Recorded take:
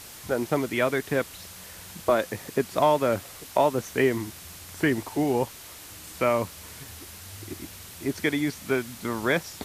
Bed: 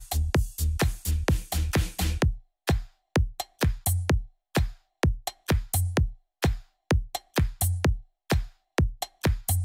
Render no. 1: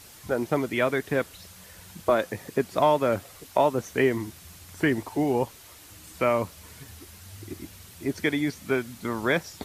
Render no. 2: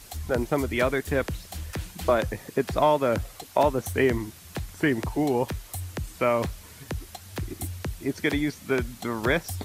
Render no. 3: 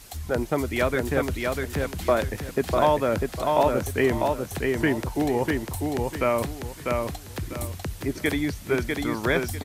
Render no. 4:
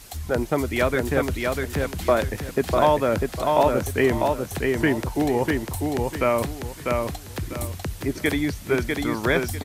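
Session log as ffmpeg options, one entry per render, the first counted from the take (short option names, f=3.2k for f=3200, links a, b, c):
-af "afftdn=nr=6:nf=-44"
-filter_complex "[1:a]volume=-9dB[a];[0:a][a]amix=inputs=2:normalize=0"
-af "aecho=1:1:647|1294|1941|2588:0.668|0.174|0.0452|0.0117"
-af "volume=2dB"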